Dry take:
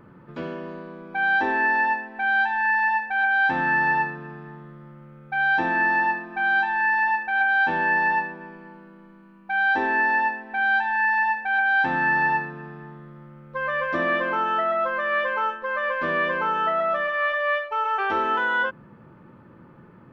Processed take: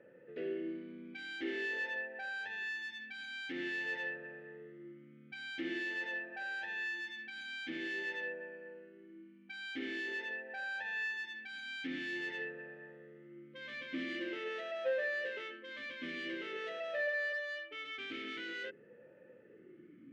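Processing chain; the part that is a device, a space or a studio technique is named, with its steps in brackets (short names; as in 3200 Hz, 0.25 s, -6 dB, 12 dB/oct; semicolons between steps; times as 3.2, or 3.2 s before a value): talk box (tube stage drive 27 dB, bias 0.3; vowel sweep e-i 0.47 Hz); gain +4.5 dB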